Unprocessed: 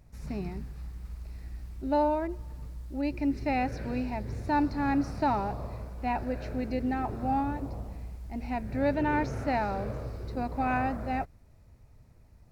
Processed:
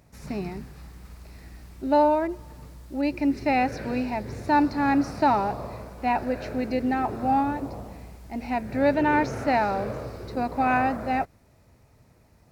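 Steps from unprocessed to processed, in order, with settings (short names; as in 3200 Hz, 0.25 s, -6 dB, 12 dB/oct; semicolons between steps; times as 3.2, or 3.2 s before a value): HPF 220 Hz 6 dB/oct; gain +7 dB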